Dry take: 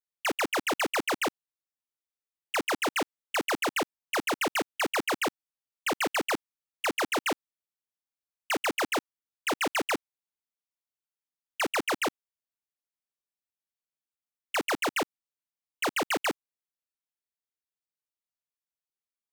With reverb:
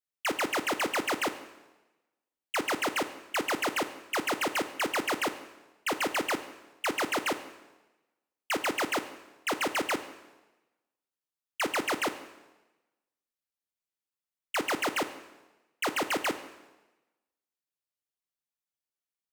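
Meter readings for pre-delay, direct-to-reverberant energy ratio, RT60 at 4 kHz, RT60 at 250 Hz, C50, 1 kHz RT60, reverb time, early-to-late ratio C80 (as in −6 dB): 4 ms, 9.5 dB, 1.0 s, 1.1 s, 12.0 dB, 1.1 s, 1.1 s, 14.0 dB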